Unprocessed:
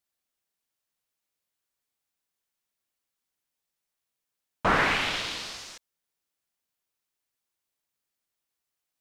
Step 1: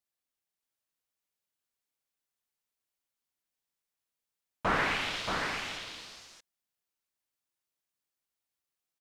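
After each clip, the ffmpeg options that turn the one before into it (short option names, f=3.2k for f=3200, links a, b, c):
-af "aecho=1:1:628:0.562,volume=-5.5dB"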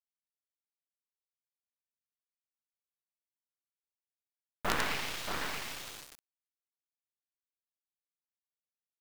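-af "acrusher=bits=4:dc=4:mix=0:aa=0.000001"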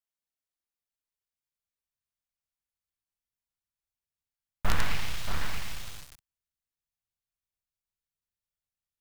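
-af "asubboost=boost=8:cutoff=120"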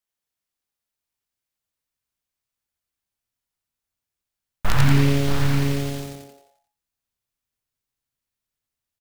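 -filter_complex "[0:a]asplit=7[a][b][c][d][e][f][g];[b]adelay=87,afreqshift=-140,volume=-3dB[h];[c]adelay=174,afreqshift=-280,volume=-9.2dB[i];[d]adelay=261,afreqshift=-420,volume=-15.4dB[j];[e]adelay=348,afreqshift=-560,volume=-21.6dB[k];[f]adelay=435,afreqshift=-700,volume=-27.8dB[l];[g]adelay=522,afreqshift=-840,volume=-34dB[m];[a][h][i][j][k][l][m]amix=inputs=7:normalize=0,volume=4.5dB"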